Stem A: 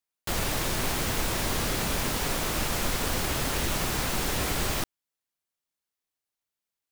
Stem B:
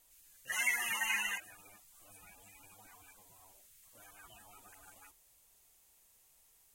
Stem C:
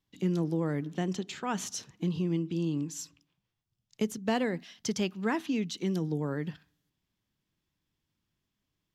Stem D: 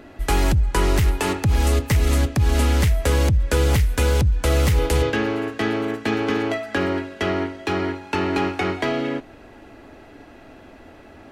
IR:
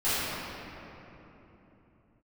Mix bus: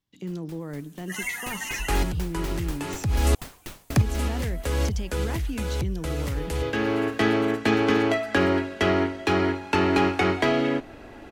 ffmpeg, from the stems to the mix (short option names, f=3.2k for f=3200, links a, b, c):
-filter_complex "[0:a]aeval=exprs='val(0)*pow(10,-39*if(lt(mod(4.1*n/s,1),2*abs(4.1)/1000),1-mod(4.1*n/s,1)/(2*abs(4.1)/1000),(mod(4.1*n/s,1)-2*abs(4.1)/1000)/(1-2*abs(4.1)/1000))/20)':c=same,volume=-5dB,afade=t=in:st=1.2:d=0.28:silence=0.237137,afade=t=out:st=3.89:d=0.33:silence=0.421697[a];[1:a]adelay=600,volume=1dB[b];[2:a]alimiter=level_in=0.5dB:limit=-24dB:level=0:latency=1,volume=-0.5dB,volume=-1.5dB,asplit=2[c][d];[3:a]adelay=1600,volume=1dB,asplit=3[e][f][g];[e]atrim=end=3.35,asetpts=PTS-STARTPTS,afade=t=out:st=3.346:d=0.004:c=hsin[h];[f]atrim=start=3.35:end=3.9,asetpts=PTS-STARTPTS,volume=0[i];[g]atrim=start=3.9,asetpts=PTS-STARTPTS,afade=t=in:d=0.004:c=hsin[j];[h][i][j]concat=n=3:v=0:a=1[k];[d]apad=whole_len=569464[l];[k][l]sidechaincompress=threshold=-45dB:ratio=4:attack=16:release=551[m];[a][b][c][m]amix=inputs=4:normalize=0"